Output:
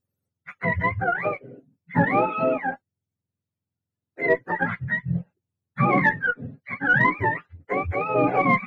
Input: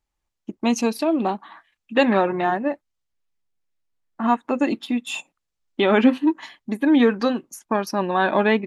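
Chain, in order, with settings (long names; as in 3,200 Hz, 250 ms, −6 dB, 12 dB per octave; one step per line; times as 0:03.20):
frequency axis turned over on the octave scale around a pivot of 680 Hz
harmonic generator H 4 −31 dB, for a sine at −7 dBFS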